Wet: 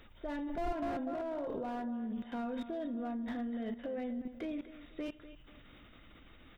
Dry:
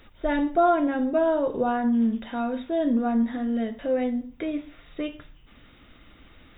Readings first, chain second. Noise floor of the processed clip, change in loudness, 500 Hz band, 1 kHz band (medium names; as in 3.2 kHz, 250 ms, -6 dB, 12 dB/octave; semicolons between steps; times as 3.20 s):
-58 dBFS, -14.0 dB, -14.5 dB, -15.0 dB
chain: level held to a coarse grid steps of 19 dB; feedback delay 246 ms, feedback 38%, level -14 dB; slew-rate limiter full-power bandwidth 12 Hz